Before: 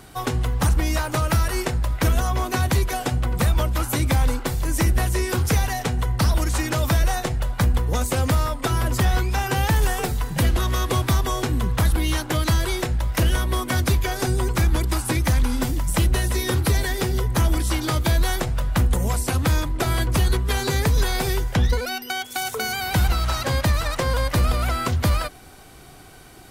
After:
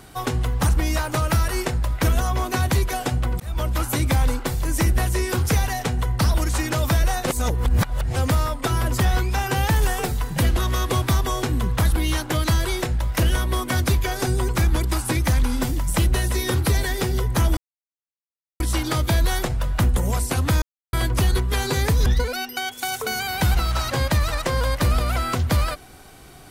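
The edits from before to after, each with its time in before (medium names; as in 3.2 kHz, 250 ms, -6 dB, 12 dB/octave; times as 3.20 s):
3.40–3.70 s: fade in linear
7.27–8.16 s: reverse
17.57 s: insert silence 1.03 s
19.59–19.90 s: mute
21.03–21.59 s: delete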